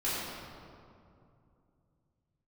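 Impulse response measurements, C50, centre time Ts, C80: −3.0 dB, 146 ms, −1.5 dB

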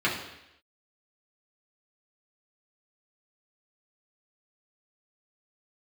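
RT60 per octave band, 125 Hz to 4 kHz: 0.75, 0.80, 0.85, 0.85, 0.90, 0.90 seconds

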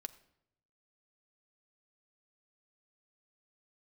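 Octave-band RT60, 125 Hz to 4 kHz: 1.2, 0.95, 0.85, 0.70, 0.65, 0.60 seconds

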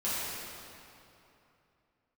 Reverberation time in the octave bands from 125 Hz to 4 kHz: 3.3, 3.0, 2.9, 2.9, 2.5, 2.1 seconds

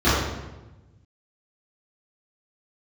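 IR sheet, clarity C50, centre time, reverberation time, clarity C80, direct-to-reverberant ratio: −1.0 dB, 82 ms, 1.1 s, 1.5 dB, −15.0 dB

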